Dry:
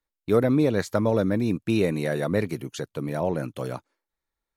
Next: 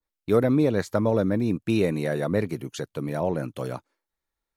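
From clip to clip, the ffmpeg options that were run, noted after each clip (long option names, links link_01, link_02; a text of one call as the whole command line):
ffmpeg -i in.wav -af "adynamicequalizer=threshold=0.0112:dfrequency=1600:dqfactor=0.7:tfrequency=1600:tqfactor=0.7:attack=5:release=100:ratio=0.375:range=2:mode=cutabove:tftype=highshelf" out.wav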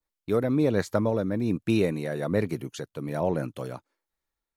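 ffmpeg -i in.wav -af "tremolo=f=1.2:d=0.42" out.wav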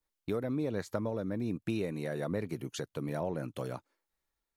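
ffmpeg -i in.wav -af "acompressor=threshold=-33dB:ratio=3" out.wav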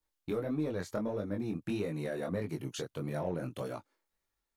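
ffmpeg -i in.wav -filter_complex "[0:a]asplit=2[link_01][link_02];[link_02]asoftclip=type=tanh:threshold=-33.5dB,volume=-6dB[link_03];[link_01][link_03]amix=inputs=2:normalize=0,flanger=delay=19:depth=5.1:speed=1.6" out.wav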